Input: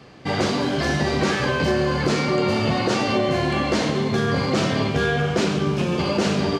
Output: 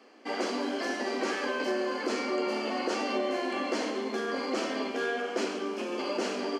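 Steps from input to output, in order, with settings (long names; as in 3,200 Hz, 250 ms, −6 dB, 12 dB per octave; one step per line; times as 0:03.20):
elliptic high-pass filter 240 Hz, stop band 40 dB
notch filter 3,700 Hz, Q 6.9
level −8 dB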